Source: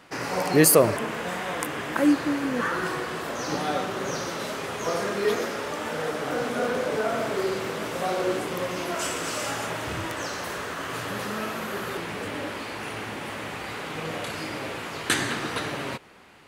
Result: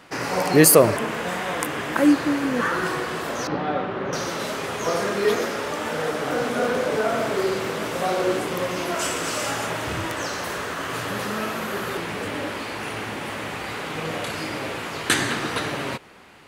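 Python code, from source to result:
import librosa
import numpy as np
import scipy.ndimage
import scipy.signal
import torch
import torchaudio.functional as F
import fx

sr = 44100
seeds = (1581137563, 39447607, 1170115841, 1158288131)

y = fx.air_absorb(x, sr, metres=380.0, at=(3.47, 4.13))
y = y * librosa.db_to_amplitude(3.5)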